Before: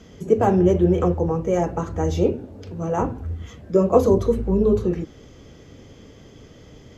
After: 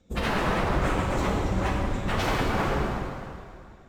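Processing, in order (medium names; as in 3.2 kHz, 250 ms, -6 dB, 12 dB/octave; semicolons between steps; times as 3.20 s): octave divider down 2 oct, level +3 dB; wavefolder -20 dBFS; gate with hold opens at -29 dBFS; compression 8:1, threshold -28 dBFS, peak gain reduction 6 dB; tape speed +13%; plate-style reverb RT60 3.8 s, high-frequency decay 0.9×, DRR -3 dB; plain phase-vocoder stretch 0.63×; trim +4 dB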